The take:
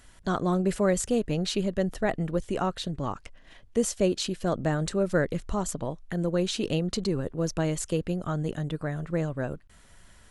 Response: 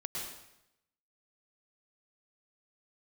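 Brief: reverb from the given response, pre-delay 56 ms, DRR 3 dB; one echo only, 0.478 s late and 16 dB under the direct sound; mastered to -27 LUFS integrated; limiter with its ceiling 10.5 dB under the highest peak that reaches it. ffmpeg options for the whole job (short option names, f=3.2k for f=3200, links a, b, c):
-filter_complex "[0:a]alimiter=limit=-22dB:level=0:latency=1,aecho=1:1:478:0.158,asplit=2[a][b];[1:a]atrim=start_sample=2205,adelay=56[c];[b][c]afir=irnorm=-1:irlink=0,volume=-4.5dB[d];[a][d]amix=inputs=2:normalize=0,volume=3dB"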